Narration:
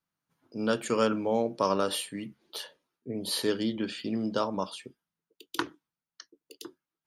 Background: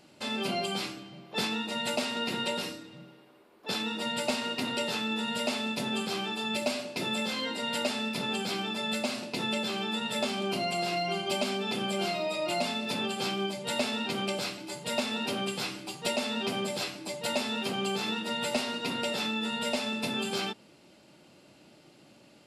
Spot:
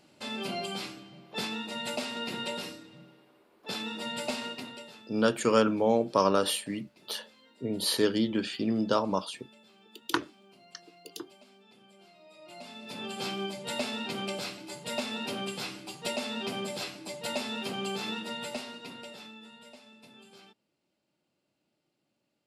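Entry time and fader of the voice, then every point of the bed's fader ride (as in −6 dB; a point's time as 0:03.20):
4.55 s, +2.5 dB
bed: 0:04.45 −3.5 dB
0:05.22 −27 dB
0:12.12 −27 dB
0:13.21 −3 dB
0:18.18 −3 dB
0:19.81 −22.5 dB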